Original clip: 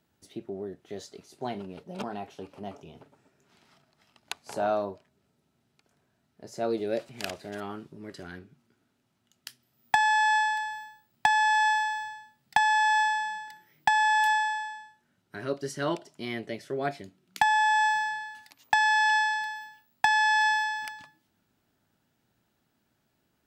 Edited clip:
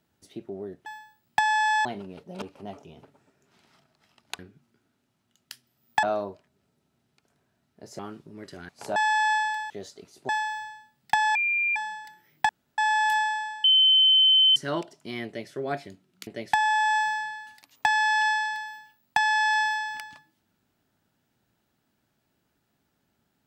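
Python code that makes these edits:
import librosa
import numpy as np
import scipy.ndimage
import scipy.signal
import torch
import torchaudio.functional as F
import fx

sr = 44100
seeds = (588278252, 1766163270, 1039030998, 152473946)

y = fx.edit(x, sr, fx.swap(start_s=0.86, length_s=0.59, other_s=10.73, other_length_s=0.99),
    fx.cut(start_s=2.02, length_s=0.38),
    fx.swap(start_s=4.37, length_s=0.27, other_s=8.35, other_length_s=1.64),
    fx.cut(start_s=6.6, length_s=1.05),
    fx.bleep(start_s=12.78, length_s=0.41, hz=2390.0, db=-22.0),
    fx.insert_room_tone(at_s=13.92, length_s=0.29),
    fx.bleep(start_s=14.78, length_s=0.92, hz=3070.0, db=-15.0),
    fx.duplicate(start_s=16.4, length_s=0.26, to_s=17.41), tone=tone)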